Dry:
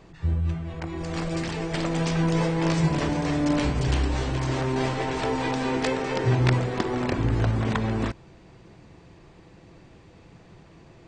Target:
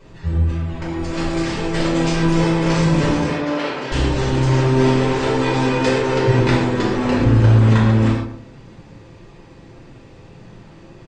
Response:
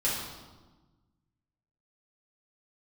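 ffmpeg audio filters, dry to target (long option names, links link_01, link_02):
-filter_complex "[0:a]asettb=1/sr,asplit=3[link_01][link_02][link_03];[link_01]atrim=end=3.264[link_04];[link_02]atrim=start=3.26:end=3.92,asetpts=PTS-STARTPTS,afade=type=in:duration=0.004:curve=qsin,afade=type=out:start_time=0.656:duration=0.004:curve=qsin,highpass=440,lowpass=3800[link_05];[link_03]atrim=start=3.916[link_06];[link_04][link_05]acrossfade=duration=0.004:curve1=hsin:curve2=qsin[link_07];[link_07][link_06]acrossfade=duration=0.004:curve1=qsin:curve2=hsin,asplit=2[link_08][link_09];[link_09]adelay=117,lowpass=frequency=910:poles=1,volume=-7.5dB,asplit=2[link_10][link_11];[link_11]adelay=117,lowpass=frequency=910:poles=1,volume=0.33,asplit=2[link_12][link_13];[link_13]adelay=117,lowpass=frequency=910:poles=1,volume=0.33,asplit=2[link_14][link_15];[link_15]adelay=117,lowpass=frequency=910:poles=1,volume=0.33[link_16];[link_08][link_10][link_12][link_14][link_16]amix=inputs=5:normalize=0[link_17];[1:a]atrim=start_sample=2205,atrim=end_sample=6615[link_18];[link_17][link_18]afir=irnorm=-1:irlink=0,volume=-1dB"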